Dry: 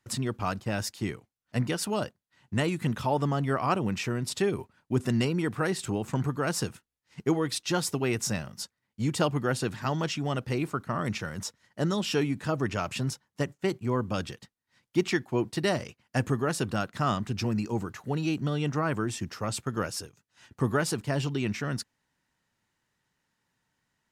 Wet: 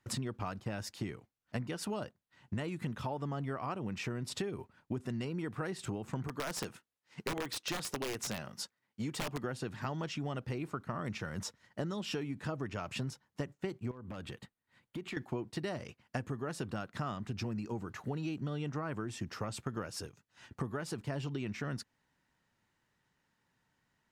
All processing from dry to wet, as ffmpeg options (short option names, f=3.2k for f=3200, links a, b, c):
-filter_complex "[0:a]asettb=1/sr,asplit=3[a][b][c];[a]atrim=end=6.274[d];[b]atrim=start=6.27:end=9.44,asetpts=PTS-STARTPTS,afade=t=in:d=0.004:c=qsin,afade=t=out:st=3.166:d=0.004:c=qsin,highpass=f=270:p=1,aeval=exprs='(mod(12.6*val(0)+1,2)-1)/12.6':c=same[e];[c]atrim=start=9.436[f];[d][e]acrossfade=d=0.004:c1=hsin:c2=qsin[g];[g][f]acrossfade=d=0.004:c1=qsin:c2=hsin,asettb=1/sr,asplit=3[h][i][j];[h]atrim=end=13.914[k];[i]atrim=start=13.91:end=15.17,asetpts=PTS-STARTPTS,afade=t=in:d=0.004:c=qsin,afade=t=out:st=1.256:d=0.004:c=qsin,equalizer=f=5.5k:w=2.9:g=-10.5,acompressor=threshold=-39dB:ratio=6:attack=3.2:release=140:knee=1:detection=peak,aeval=exprs='0.0211*(abs(mod(val(0)/0.0211+3,4)-2)-1)':c=same[l];[j]atrim=start=15.166[m];[k][l]acrossfade=d=0.004:c1=hsin:c2=qsin[n];[n][m]acrossfade=d=0.004:c1=qsin:c2=hsin,highshelf=f=4.4k:g=-7,acompressor=threshold=-35dB:ratio=12,volume=1dB"